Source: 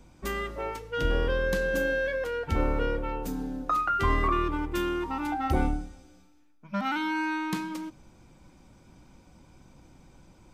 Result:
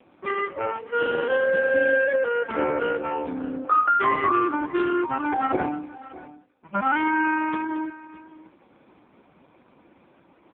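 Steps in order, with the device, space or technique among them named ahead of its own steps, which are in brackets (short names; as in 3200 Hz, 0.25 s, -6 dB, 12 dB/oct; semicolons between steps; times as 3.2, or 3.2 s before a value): satellite phone (BPF 300–3000 Hz; echo 0.606 s -18 dB; gain +8.5 dB; AMR-NB 4.75 kbps 8000 Hz)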